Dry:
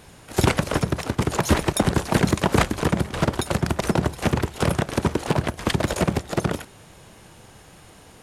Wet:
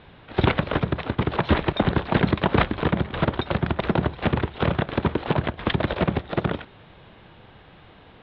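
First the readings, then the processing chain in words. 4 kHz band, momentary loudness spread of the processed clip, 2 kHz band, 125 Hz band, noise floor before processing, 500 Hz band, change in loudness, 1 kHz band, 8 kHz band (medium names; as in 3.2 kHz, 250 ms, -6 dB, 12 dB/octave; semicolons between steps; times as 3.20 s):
-2.0 dB, 5 LU, 0.0 dB, -1.0 dB, -48 dBFS, -1.0 dB, -1.0 dB, -0.5 dB, under -40 dB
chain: elliptic low-pass 3.7 kHz, stop band 50 dB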